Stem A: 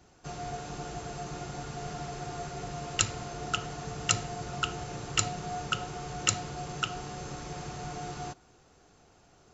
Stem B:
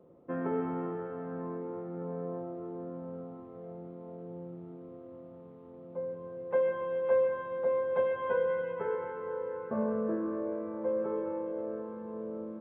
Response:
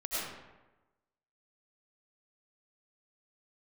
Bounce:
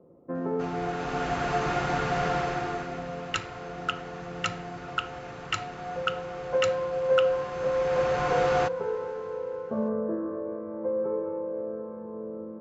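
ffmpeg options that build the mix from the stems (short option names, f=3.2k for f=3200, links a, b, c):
-filter_complex "[0:a]equalizer=f=1.8k:w=0.41:g=13.5,dynaudnorm=f=120:g=13:m=11dB,adelay=350,volume=-5dB[a];[1:a]highshelf=f=2.1k:g=-10.5,volume=2.5dB,asplit=2[b][c];[c]volume=-16.5dB[d];[2:a]atrim=start_sample=2205[e];[d][e]afir=irnorm=-1:irlink=0[f];[a][b][f]amix=inputs=3:normalize=0,aemphasis=mode=reproduction:type=75kf"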